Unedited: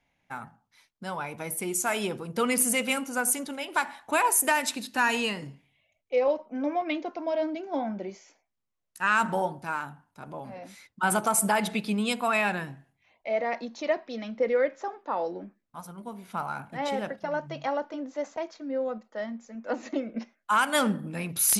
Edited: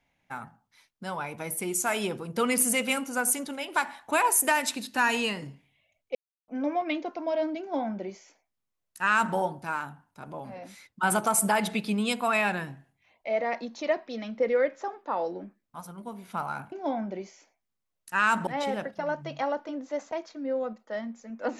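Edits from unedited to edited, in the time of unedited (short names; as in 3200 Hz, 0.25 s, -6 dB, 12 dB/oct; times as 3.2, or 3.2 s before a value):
6.15–6.48 mute
7.6–9.35 copy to 16.72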